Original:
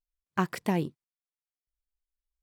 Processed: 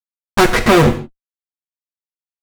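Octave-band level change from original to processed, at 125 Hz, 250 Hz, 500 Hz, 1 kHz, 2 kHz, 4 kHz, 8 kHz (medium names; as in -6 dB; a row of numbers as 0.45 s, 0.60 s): +16.0 dB, +15.5 dB, +21.0 dB, +17.5 dB, +21.0 dB, +24.5 dB, +22.5 dB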